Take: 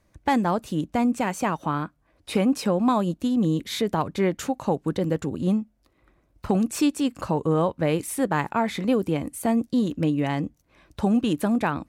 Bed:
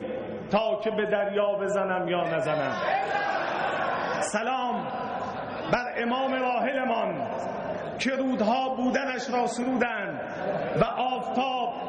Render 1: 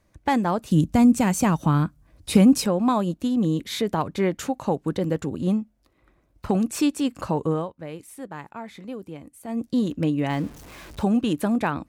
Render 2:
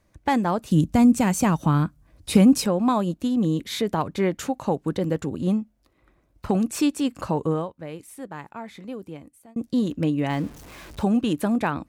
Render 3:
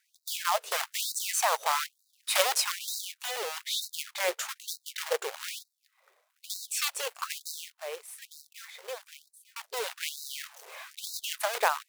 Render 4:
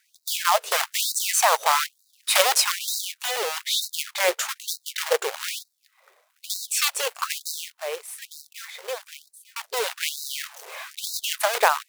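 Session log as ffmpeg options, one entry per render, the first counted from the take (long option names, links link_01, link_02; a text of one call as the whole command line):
ffmpeg -i in.wav -filter_complex "[0:a]asettb=1/sr,asplit=3[link_01][link_02][link_03];[link_01]atrim=end=0.714[link_04];[link_02]atrim=start=0.71:end=2.66,asetpts=PTS-STARTPTS,afade=type=in:duration=0.004:curve=qsin,afade=type=out:start_time=1.946:duration=0.004:curve=qsin,bass=frequency=250:gain=13,treble=frequency=4000:gain=9[link_05];[link_03]atrim=start=2.656[link_06];[link_04][link_05]acrossfade=duration=0.004:curve1=hsin:curve2=qsin[link_07];[link_07][link_06]acrossfade=duration=0.004:curve1=qsin:curve2=hsin,asettb=1/sr,asplit=3[link_08][link_09][link_10];[link_08]atrim=end=10.304[link_11];[link_09]atrim=start=10.3:end=11.04,asetpts=PTS-STARTPTS,afade=type=in:duration=0.004:curve=qsin,afade=type=out:start_time=0.736:duration=0.004:curve=qsin,aeval=exprs='val(0)+0.5*0.0119*sgn(val(0))':channel_layout=same[link_12];[link_10]atrim=start=11.036[link_13];[link_11][link_12]acrossfade=duration=0.004:curve1=hsin:curve2=qsin[link_14];[link_14][link_13]acrossfade=duration=0.004:curve1=qsin:curve2=hsin,asplit=3[link_15][link_16][link_17];[link_15]atrim=end=7.69,asetpts=PTS-STARTPTS,afade=type=out:start_time=7.47:duration=0.22:silence=0.223872[link_18];[link_16]atrim=start=7.69:end=9.47,asetpts=PTS-STARTPTS,volume=-13dB[link_19];[link_17]atrim=start=9.47,asetpts=PTS-STARTPTS,afade=type=in:duration=0.22:silence=0.223872[link_20];[link_18][link_19][link_20]concat=n=3:v=0:a=1" out.wav
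ffmpeg -i in.wav -filter_complex "[0:a]asplit=2[link_01][link_02];[link_01]atrim=end=9.56,asetpts=PTS-STARTPTS,afade=type=out:start_time=9.15:duration=0.41[link_03];[link_02]atrim=start=9.56,asetpts=PTS-STARTPTS,afade=type=in:duration=0.004:curve=hsin[link_04];[link_03][link_04]concat=n=2:v=0:a=1" out.wav
ffmpeg -i in.wav -af "acrusher=bits=2:mode=log:mix=0:aa=0.000001,afftfilt=real='re*gte(b*sr/1024,380*pow(3800/380,0.5+0.5*sin(2*PI*1.1*pts/sr)))':imag='im*gte(b*sr/1024,380*pow(3800/380,0.5+0.5*sin(2*PI*1.1*pts/sr)))':win_size=1024:overlap=0.75" out.wav
ffmpeg -i in.wav -af "volume=7.5dB,alimiter=limit=-3dB:level=0:latency=1" out.wav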